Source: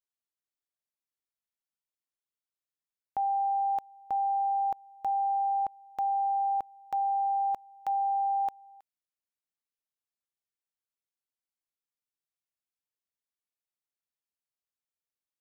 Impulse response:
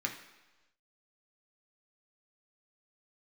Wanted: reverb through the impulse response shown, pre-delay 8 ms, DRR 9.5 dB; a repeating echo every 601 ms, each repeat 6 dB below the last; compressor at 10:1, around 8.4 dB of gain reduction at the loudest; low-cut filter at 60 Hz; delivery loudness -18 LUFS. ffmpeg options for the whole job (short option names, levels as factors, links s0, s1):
-filter_complex "[0:a]highpass=60,acompressor=threshold=0.0178:ratio=10,aecho=1:1:601|1202|1803|2404|3005|3606:0.501|0.251|0.125|0.0626|0.0313|0.0157,asplit=2[s0][s1];[1:a]atrim=start_sample=2205,adelay=8[s2];[s1][s2]afir=irnorm=-1:irlink=0,volume=0.211[s3];[s0][s3]amix=inputs=2:normalize=0,volume=10.6"